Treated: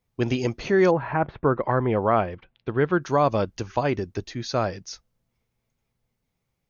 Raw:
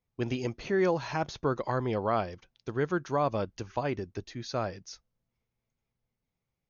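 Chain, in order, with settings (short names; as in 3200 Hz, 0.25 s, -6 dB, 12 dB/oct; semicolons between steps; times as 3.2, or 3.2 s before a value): 0.9–3 LPF 1900 Hz -> 3600 Hz 24 dB/oct; gain +7.5 dB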